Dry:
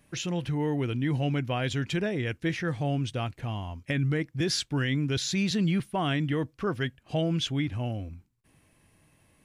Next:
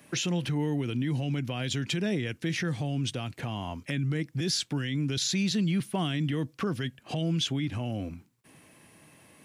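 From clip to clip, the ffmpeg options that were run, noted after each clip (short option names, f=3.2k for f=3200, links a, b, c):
-filter_complex "[0:a]acrossover=split=250|3000[a][b][c];[b]acompressor=threshold=-39dB:ratio=6[d];[a][d][c]amix=inputs=3:normalize=0,alimiter=level_in=4.5dB:limit=-24dB:level=0:latency=1:release=96,volume=-4.5dB,highpass=160,volume=9dB"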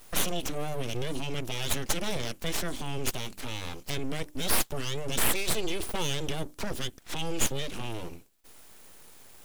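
-af "bandreject=f=50:t=h:w=6,bandreject=f=100:t=h:w=6,bandreject=f=150:t=h:w=6,bandreject=f=200:t=h:w=6,aexciter=amount=2.4:drive=6:freq=2.8k,aeval=exprs='abs(val(0))':c=same"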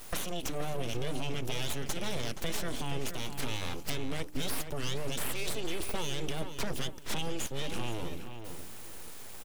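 -filter_complex "[0:a]alimiter=limit=-19dB:level=0:latency=1:release=294,acompressor=threshold=-36dB:ratio=4,asplit=2[a][b];[b]adelay=474,lowpass=f=3.3k:p=1,volume=-8dB,asplit=2[c][d];[d]adelay=474,lowpass=f=3.3k:p=1,volume=0.28,asplit=2[e][f];[f]adelay=474,lowpass=f=3.3k:p=1,volume=0.28[g];[a][c][e][g]amix=inputs=4:normalize=0,volume=5.5dB"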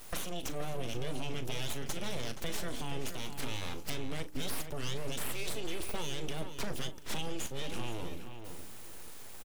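-filter_complex "[0:a]asplit=2[a][b];[b]adelay=39,volume=-13.5dB[c];[a][c]amix=inputs=2:normalize=0,volume=-3dB"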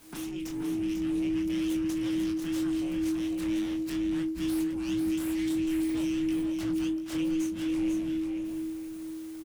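-filter_complex "[0:a]flanger=delay=18:depth=8:speed=3,asplit=2[a][b];[b]aecho=0:1:495:0.473[c];[a][c]amix=inputs=2:normalize=0,afreqshift=-320"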